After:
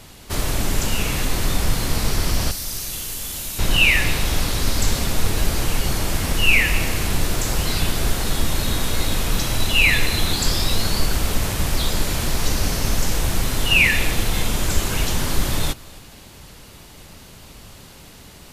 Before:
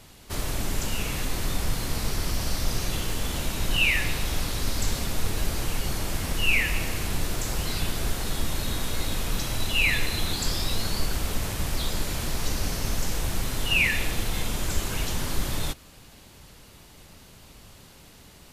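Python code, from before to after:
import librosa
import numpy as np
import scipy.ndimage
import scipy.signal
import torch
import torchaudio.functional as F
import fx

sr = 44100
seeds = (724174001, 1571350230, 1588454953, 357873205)

p1 = fx.pre_emphasis(x, sr, coefficient=0.8, at=(2.51, 3.59))
p2 = p1 + fx.echo_single(p1, sr, ms=265, db=-23.0, dry=0)
y = p2 * librosa.db_to_amplitude(7.0)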